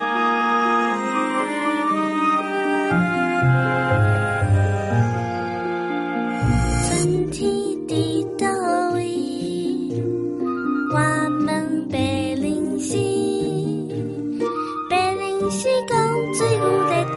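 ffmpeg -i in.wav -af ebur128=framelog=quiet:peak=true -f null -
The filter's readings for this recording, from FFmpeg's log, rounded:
Integrated loudness:
  I:         -21.1 LUFS
  Threshold: -31.0 LUFS
Loudness range:
  LRA:         3.3 LU
  Threshold: -41.3 LUFS
  LRA low:   -22.8 LUFS
  LRA high:  -19.5 LUFS
True peak:
  Peak:       -6.7 dBFS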